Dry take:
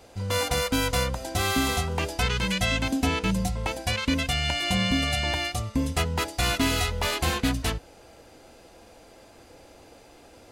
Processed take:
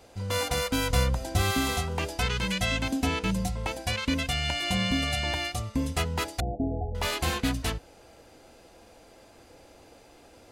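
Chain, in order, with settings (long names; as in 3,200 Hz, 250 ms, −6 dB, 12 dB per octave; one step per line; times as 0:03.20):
0:00.90–0:01.51: low-shelf EQ 180 Hz +8.5 dB
0:06.40–0:06.95: Chebyshev low-pass filter 840 Hz, order 10
level −2.5 dB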